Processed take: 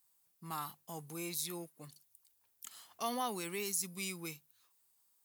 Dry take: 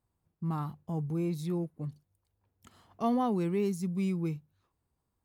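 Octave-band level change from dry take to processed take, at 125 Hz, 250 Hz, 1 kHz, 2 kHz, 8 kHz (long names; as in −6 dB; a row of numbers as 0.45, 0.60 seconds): −17.5, −14.5, −4.0, +4.5, +13.5 decibels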